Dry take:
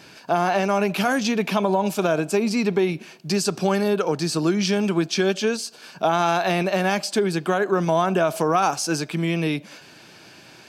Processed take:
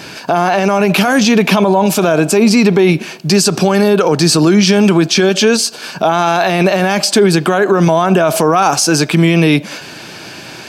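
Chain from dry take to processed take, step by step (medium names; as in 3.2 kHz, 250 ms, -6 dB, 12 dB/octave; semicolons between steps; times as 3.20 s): loudness maximiser +17 dB; trim -1 dB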